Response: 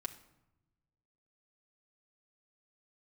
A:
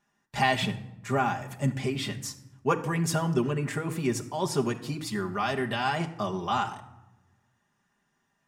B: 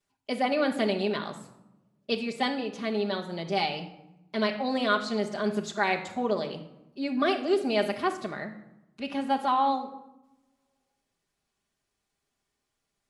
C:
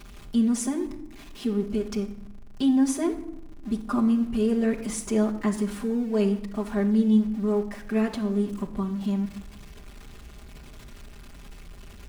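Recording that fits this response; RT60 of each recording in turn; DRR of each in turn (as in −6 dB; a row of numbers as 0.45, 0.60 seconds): A; non-exponential decay, non-exponential decay, non-exponential decay; 1.5, −8.0, −3.5 decibels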